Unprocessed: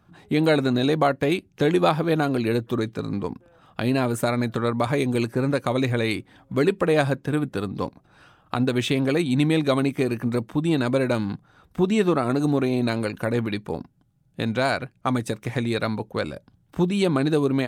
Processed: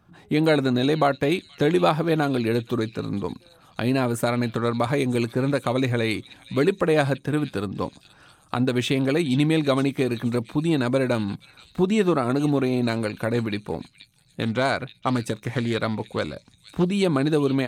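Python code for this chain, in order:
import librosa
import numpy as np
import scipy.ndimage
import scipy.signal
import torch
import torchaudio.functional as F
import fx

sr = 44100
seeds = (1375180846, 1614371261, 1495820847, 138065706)

y = fx.echo_stepped(x, sr, ms=475, hz=3700.0, octaves=0.7, feedback_pct=70, wet_db=-10.0)
y = fx.doppler_dist(y, sr, depth_ms=0.21, at=(14.42, 16.9))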